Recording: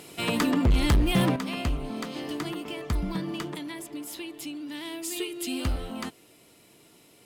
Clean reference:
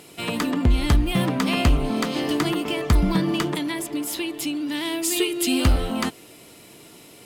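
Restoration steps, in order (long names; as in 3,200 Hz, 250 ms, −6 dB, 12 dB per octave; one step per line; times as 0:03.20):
clipped peaks rebuilt −16.5 dBFS
level 0 dB, from 0:01.36 +10 dB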